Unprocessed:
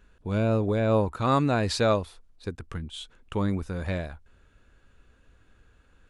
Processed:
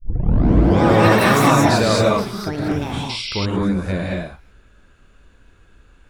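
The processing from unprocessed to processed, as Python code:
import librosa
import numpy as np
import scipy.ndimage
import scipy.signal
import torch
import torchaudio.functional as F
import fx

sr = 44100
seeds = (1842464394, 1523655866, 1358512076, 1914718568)

y = fx.tape_start_head(x, sr, length_s=0.84)
y = fx.echo_pitch(y, sr, ms=225, semitones=7, count=3, db_per_echo=-3.0)
y = fx.rev_gated(y, sr, seeds[0], gate_ms=250, shape='rising', drr_db=-3.5)
y = fx.spec_paint(y, sr, seeds[1], shape='noise', start_s=3.09, length_s=0.37, low_hz=2000.0, high_hz=5700.0, level_db=-31.0)
y = y * librosa.db_to_amplitude(3.0)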